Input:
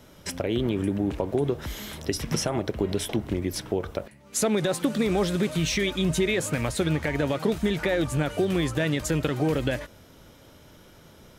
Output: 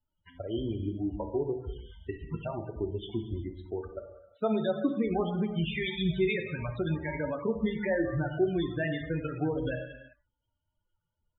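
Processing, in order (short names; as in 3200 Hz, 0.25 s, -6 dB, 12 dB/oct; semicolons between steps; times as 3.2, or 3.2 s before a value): per-bin expansion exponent 2; non-linear reverb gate 0.42 s falling, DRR 3 dB; downsampling 8000 Hz; loudest bins only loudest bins 32; gain -1.5 dB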